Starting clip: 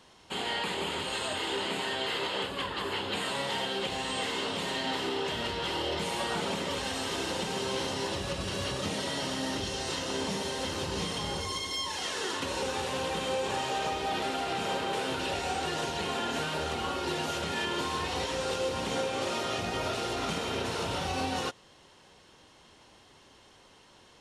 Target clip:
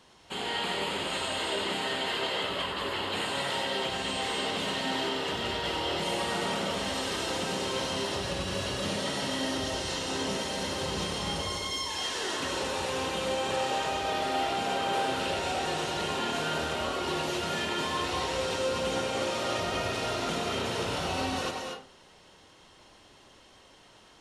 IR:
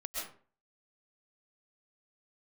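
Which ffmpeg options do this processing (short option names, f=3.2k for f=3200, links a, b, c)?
-filter_complex "[0:a]asplit=2[a][b];[1:a]atrim=start_sample=2205,adelay=95[c];[b][c]afir=irnorm=-1:irlink=0,volume=-2.5dB[d];[a][d]amix=inputs=2:normalize=0,volume=-1dB"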